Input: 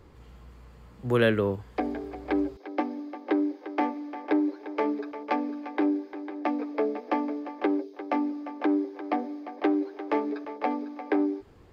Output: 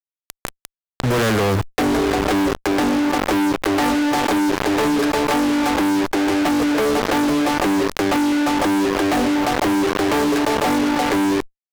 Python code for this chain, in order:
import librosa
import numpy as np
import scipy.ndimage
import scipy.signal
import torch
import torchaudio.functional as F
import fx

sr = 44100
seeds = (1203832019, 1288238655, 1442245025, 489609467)

y = fx.law_mismatch(x, sr, coded='A')
y = fx.highpass(y, sr, hz=59.0, slope=24, at=(1.18, 3.83))
y = fx.fuzz(y, sr, gain_db=50.0, gate_db=-46.0)
y = fx.env_flatten(y, sr, amount_pct=70)
y = y * 10.0 ** (-3.5 / 20.0)